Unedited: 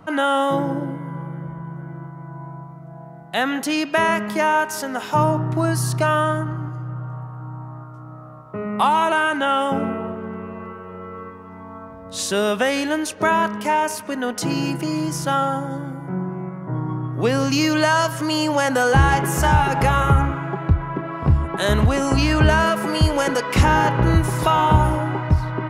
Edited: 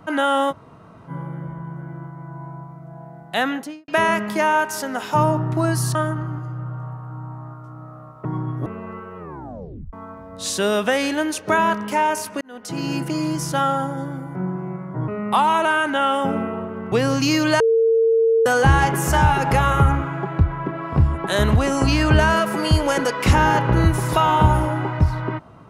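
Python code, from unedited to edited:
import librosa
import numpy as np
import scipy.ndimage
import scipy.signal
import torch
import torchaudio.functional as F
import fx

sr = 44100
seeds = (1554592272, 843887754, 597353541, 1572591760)

y = fx.studio_fade_out(x, sr, start_s=3.42, length_s=0.46)
y = fx.edit(y, sr, fx.room_tone_fill(start_s=0.51, length_s=0.58, crossfade_s=0.04),
    fx.cut(start_s=5.95, length_s=0.3),
    fx.swap(start_s=8.55, length_s=1.84, other_s=16.81, other_length_s=0.41),
    fx.tape_stop(start_s=10.91, length_s=0.75),
    fx.fade_in_span(start_s=14.14, length_s=0.61),
    fx.bleep(start_s=17.9, length_s=0.86, hz=453.0, db=-13.0), tone=tone)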